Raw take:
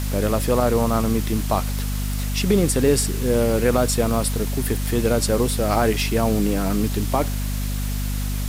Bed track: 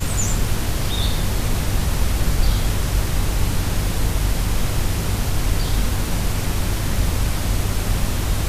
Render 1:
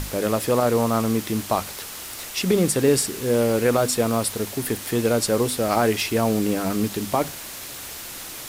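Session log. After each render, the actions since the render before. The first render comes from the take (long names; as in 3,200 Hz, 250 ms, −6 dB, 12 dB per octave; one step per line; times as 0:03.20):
mains-hum notches 50/100/150/200/250 Hz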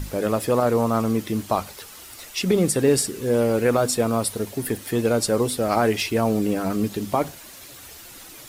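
broadband denoise 9 dB, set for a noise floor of −36 dBFS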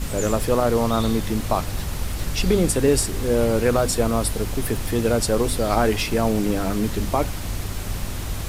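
mix in bed track −7.5 dB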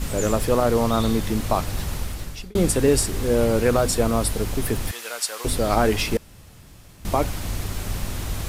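0:01.92–0:02.55: fade out
0:04.91–0:05.45: high-pass filter 1,300 Hz
0:06.17–0:07.05: fill with room tone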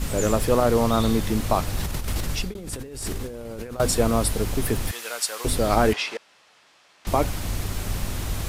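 0:01.80–0:03.80: compressor whose output falls as the input rises −31 dBFS
0:05.93–0:07.07: band-pass filter 750–4,800 Hz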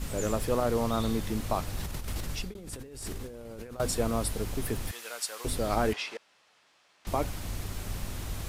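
level −8 dB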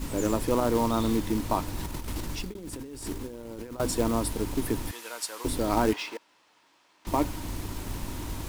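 hollow resonant body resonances 300/940 Hz, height 11 dB, ringing for 35 ms
floating-point word with a short mantissa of 2 bits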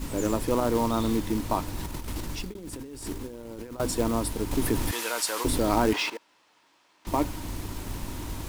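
0:04.51–0:06.10: envelope flattener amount 50%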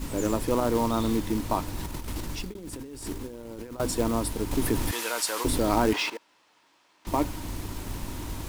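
no processing that can be heard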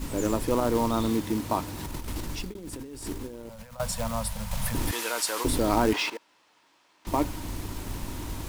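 0:01.07–0:01.86: high-pass filter 73 Hz
0:03.49–0:04.75: elliptic band-stop filter 210–540 Hz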